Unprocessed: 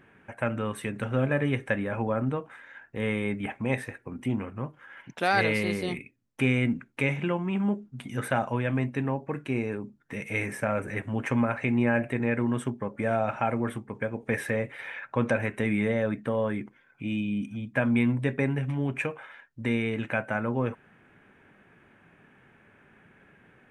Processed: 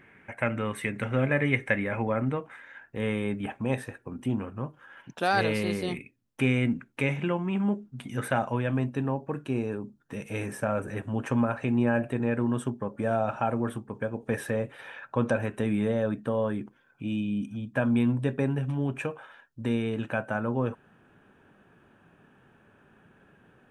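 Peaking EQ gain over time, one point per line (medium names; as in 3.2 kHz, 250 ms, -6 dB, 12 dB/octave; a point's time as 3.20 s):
peaking EQ 2.1 kHz 0.34 oct
2.19 s +10 dB
2.66 s +1 dB
3.61 s -10.5 dB
5.42 s -10.5 dB
5.82 s -3 dB
8.47 s -3 dB
8.92 s -14.5 dB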